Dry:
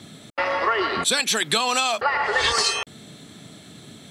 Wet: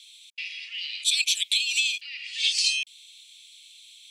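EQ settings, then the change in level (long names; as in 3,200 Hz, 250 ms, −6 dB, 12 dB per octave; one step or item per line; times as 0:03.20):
Chebyshev high-pass filter 2,400 Hz, order 6
high-shelf EQ 5,200 Hz −9 dB
+3.5 dB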